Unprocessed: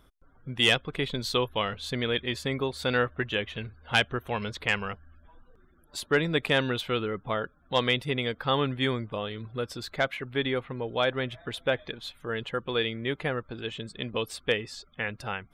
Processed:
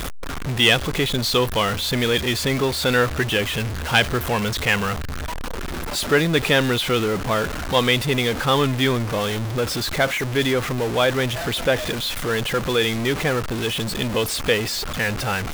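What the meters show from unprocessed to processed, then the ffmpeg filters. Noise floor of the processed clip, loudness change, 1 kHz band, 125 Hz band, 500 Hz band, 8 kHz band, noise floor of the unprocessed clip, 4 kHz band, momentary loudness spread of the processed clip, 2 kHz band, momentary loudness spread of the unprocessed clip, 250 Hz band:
−28 dBFS, +8.5 dB, +8.0 dB, +10.5 dB, +8.0 dB, +16.0 dB, −61 dBFS, +8.5 dB, 6 LU, +8.0 dB, 10 LU, +9.0 dB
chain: -af "aeval=exprs='val(0)+0.5*0.0447*sgn(val(0))':channel_layout=same,volume=5dB"

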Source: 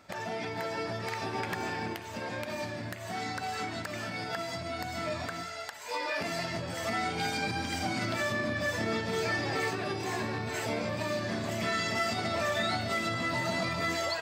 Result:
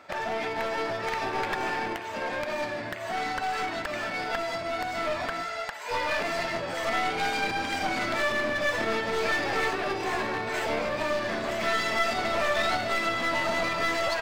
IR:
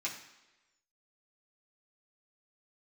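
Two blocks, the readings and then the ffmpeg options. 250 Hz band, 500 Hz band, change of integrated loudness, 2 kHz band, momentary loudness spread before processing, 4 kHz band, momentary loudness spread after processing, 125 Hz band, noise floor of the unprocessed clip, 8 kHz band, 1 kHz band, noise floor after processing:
0.0 dB, +5.0 dB, +4.5 dB, +5.5 dB, 7 LU, +3.0 dB, 6 LU, −5.5 dB, −41 dBFS, 0.0 dB, +6.0 dB, −35 dBFS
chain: -af "bass=frequency=250:gain=-14,treble=frequency=4000:gain=-10,aeval=exprs='clip(val(0),-1,0.0133)':channel_layout=same,volume=8dB"

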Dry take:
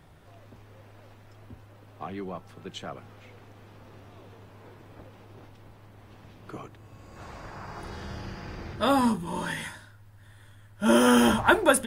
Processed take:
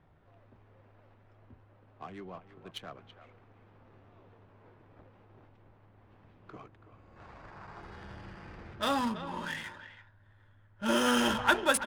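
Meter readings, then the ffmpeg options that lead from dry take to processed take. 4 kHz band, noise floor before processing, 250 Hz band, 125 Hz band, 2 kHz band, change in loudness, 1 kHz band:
−2.0 dB, −53 dBFS, −9.0 dB, −9.5 dB, −3.5 dB, −5.5 dB, −5.5 dB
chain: -filter_complex "[0:a]tiltshelf=frequency=1400:gain=-5,adynamicsmooth=sensitivity=7:basefreq=1400,asplit=2[link_01][link_02];[link_02]adelay=330,highpass=300,lowpass=3400,asoftclip=type=hard:threshold=-12dB,volume=-12dB[link_03];[link_01][link_03]amix=inputs=2:normalize=0,volume=-4.5dB"

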